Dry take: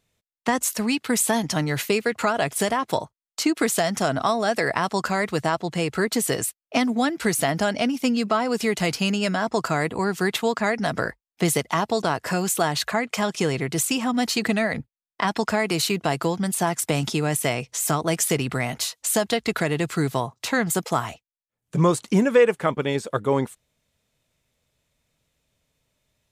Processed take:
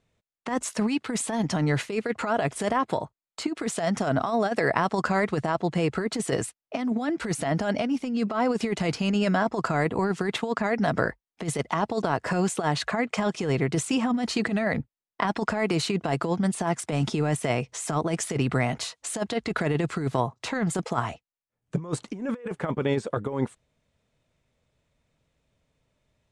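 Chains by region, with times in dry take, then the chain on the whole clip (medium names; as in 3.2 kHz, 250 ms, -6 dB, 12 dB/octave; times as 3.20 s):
2.84–3.48 s: band-stop 5.8 kHz, Q 6.3 + compression 2:1, threshold -25 dBFS
whole clip: steep low-pass 10 kHz 36 dB/octave; treble shelf 2.8 kHz -11 dB; compressor with a negative ratio -24 dBFS, ratio -0.5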